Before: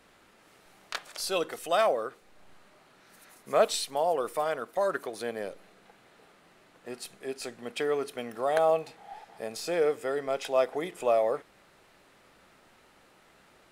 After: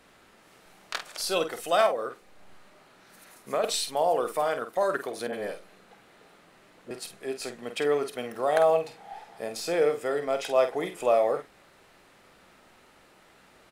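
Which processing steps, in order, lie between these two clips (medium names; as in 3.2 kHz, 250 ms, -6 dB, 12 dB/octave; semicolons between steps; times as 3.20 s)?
1.86–3.64 s: compression 6:1, threshold -27 dBFS, peak gain reduction 10 dB; 5.27–6.91 s: phase dispersion highs, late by 59 ms, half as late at 710 Hz; doubling 48 ms -8.5 dB; trim +2 dB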